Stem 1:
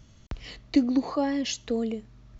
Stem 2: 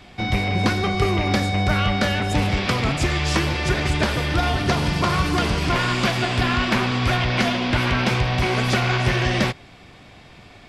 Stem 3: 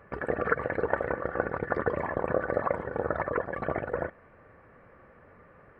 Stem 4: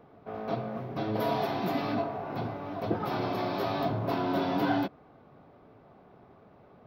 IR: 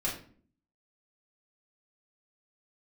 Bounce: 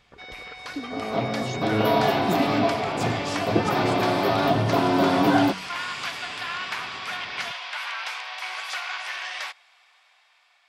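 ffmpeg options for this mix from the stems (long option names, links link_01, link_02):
-filter_complex "[0:a]volume=-14.5dB[link_01];[1:a]highpass=frequency=850:width=0.5412,highpass=frequency=850:width=1.3066,volume=-13dB[link_02];[2:a]acompressor=threshold=-29dB:ratio=6,volume=-14dB[link_03];[3:a]bandreject=frequency=46.6:width_type=h:width=4,bandreject=frequency=93.2:width_type=h:width=4,bandreject=frequency=139.8:width_type=h:width=4,bandreject=frequency=186.4:width_type=h:width=4,bandreject=frequency=233:width_type=h:width=4,acontrast=84,adelay=650,volume=-4.5dB[link_04];[link_01][link_02][link_03][link_04]amix=inputs=4:normalize=0,dynaudnorm=framelen=330:gausssize=7:maxgain=6dB"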